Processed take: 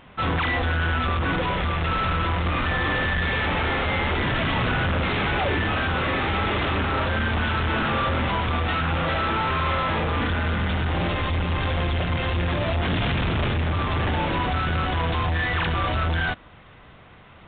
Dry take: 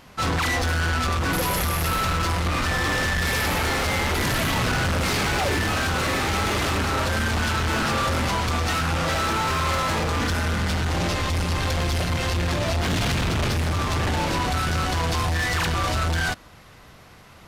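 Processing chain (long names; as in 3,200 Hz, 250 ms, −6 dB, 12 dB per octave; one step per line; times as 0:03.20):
mu-law 64 kbit/s 8,000 Hz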